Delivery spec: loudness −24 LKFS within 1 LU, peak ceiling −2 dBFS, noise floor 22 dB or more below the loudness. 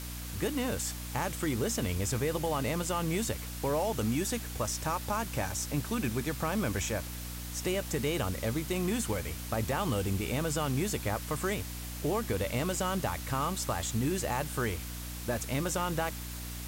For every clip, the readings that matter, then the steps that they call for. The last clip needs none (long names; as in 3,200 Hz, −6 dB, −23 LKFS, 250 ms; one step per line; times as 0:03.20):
mains hum 60 Hz; hum harmonics up to 300 Hz; level of the hum −39 dBFS; background noise floor −40 dBFS; target noise floor −55 dBFS; integrated loudness −32.5 LKFS; sample peak −17.5 dBFS; target loudness −24.0 LKFS
→ mains-hum notches 60/120/180/240/300 Hz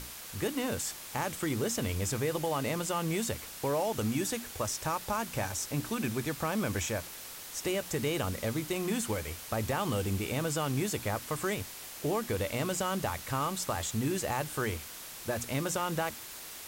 mains hum none found; background noise floor −45 dBFS; target noise floor −55 dBFS
→ broadband denoise 10 dB, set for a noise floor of −45 dBFS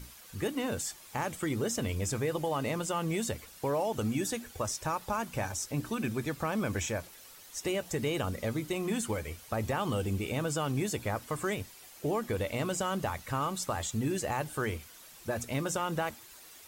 background noise floor −53 dBFS; target noise floor −56 dBFS
→ broadband denoise 6 dB, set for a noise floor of −53 dBFS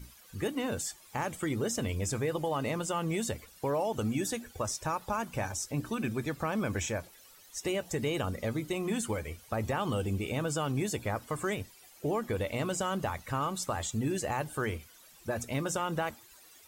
background noise floor −57 dBFS; integrated loudness −33.5 LKFS; sample peak −19.5 dBFS; target loudness −24.0 LKFS
→ level +9.5 dB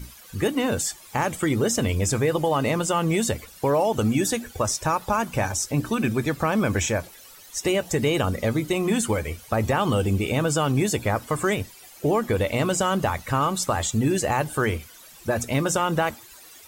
integrated loudness −24.0 LKFS; sample peak −10.0 dBFS; background noise floor −47 dBFS